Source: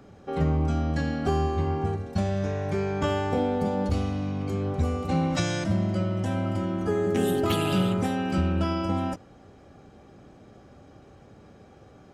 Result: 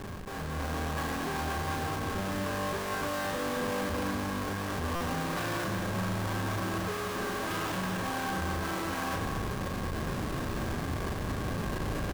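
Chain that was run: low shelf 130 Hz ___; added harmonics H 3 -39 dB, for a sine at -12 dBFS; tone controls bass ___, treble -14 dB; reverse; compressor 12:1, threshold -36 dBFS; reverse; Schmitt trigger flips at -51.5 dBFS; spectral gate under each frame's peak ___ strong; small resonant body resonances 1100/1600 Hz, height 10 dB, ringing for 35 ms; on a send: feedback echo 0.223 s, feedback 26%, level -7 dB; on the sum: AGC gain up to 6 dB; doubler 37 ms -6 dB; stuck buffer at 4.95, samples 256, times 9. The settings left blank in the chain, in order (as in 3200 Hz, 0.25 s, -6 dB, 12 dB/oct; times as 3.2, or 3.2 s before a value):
+3 dB, -7 dB, -55 dB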